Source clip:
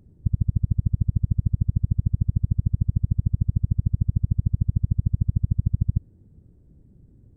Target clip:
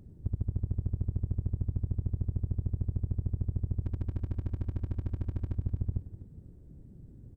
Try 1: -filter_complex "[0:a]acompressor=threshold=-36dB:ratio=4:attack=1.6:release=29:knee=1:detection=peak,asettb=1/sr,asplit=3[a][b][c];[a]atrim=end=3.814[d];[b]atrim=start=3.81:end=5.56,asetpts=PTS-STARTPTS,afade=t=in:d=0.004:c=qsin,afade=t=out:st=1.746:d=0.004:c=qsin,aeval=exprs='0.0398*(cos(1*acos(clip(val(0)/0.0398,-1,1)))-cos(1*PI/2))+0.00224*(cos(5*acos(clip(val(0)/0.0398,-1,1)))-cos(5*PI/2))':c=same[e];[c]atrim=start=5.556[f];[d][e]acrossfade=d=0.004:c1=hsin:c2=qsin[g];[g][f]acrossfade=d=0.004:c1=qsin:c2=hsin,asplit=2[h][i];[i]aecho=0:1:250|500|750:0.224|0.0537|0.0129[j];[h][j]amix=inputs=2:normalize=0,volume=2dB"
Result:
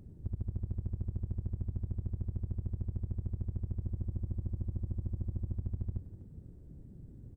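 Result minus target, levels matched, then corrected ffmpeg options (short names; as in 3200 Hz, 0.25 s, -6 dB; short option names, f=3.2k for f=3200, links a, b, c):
compressor: peak gain reduction +5 dB
-filter_complex "[0:a]acompressor=threshold=-29dB:ratio=4:attack=1.6:release=29:knee=1:detection=peak,asettb=1/sr,asplit=3[a][b][c];[a]atrim=end=3.814[d];[b]atrim=start=3.81:end=5.56,asetpts=PTS-STARTPTS,afade=t=in:d=0.004:c=qsin,afade=t=out:st=1.746:d=0.004:c=qsin,aeval=exprs='0.0398*(cos(1*acos(clip(val(0)/0.0398,-1,1)))-cos(1*PI/2))+0.00224*(cos(5*acos(clip(val(0)/0.0398,-1,1)))-cos(5*PI/2))':c=same[e];[c]atrim=start=5.556[f];[d][e]acrossfade=d=0.004:c1=hsin:c2=qsin[g];[g][f]acrossfade=d=0.004:c1=qsin:c2=hsin,asplit=2[h][i];[i]aecho=0:1:250|500|750:0.224|0.0537|0.0129[j];[h][j]amix=inputs=2:normalize=0,volume=2dB"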